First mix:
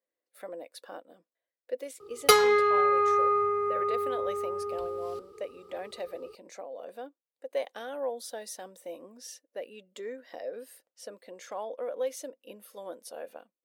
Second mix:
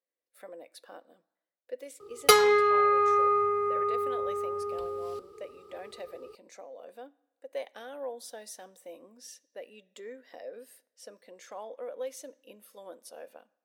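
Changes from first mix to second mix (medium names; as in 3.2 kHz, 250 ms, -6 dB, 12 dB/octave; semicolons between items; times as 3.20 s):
speech -6.0 dB; reverb: on, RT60 1.0 s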